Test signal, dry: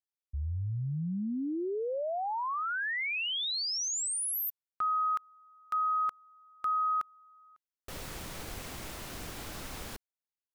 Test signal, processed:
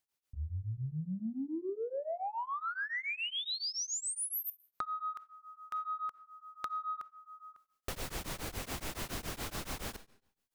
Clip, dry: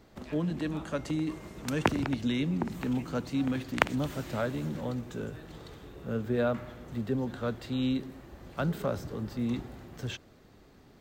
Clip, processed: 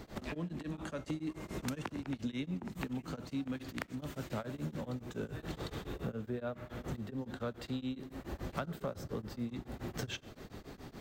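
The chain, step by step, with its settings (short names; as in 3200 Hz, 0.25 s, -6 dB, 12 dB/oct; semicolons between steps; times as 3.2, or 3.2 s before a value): compressor 10:1, threshold -44 dBFS; soft clip -32.5 dBFS; digital reverb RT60 0.72 s, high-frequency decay 0.95×, pre-delay 5 ms, DRR 16.5 dB; beating tremolo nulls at 7.1 Hz; gain +10.5 dB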